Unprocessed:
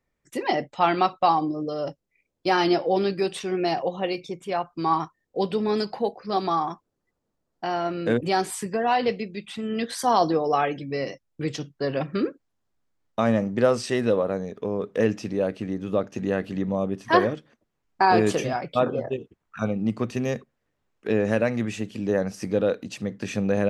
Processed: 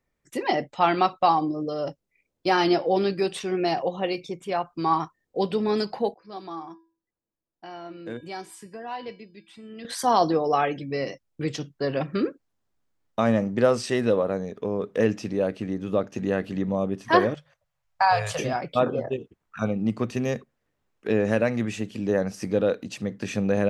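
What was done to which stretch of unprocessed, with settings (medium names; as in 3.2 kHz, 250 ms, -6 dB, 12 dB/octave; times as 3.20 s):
6.14–9.85 s: feedback comb 330 Hz, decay 0.38 s, harmonics odd, mix 80%
17.34–18.39 s: elliptic band-stop 150–540 Hz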